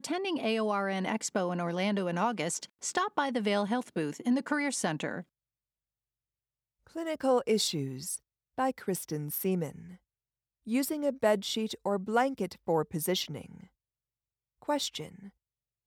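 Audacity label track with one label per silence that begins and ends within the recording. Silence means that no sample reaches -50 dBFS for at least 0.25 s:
5.230000	6.870000	silence
8.180000	8.580000	silence
9.960000	10.670000	silence
13.660000	14.620000	silence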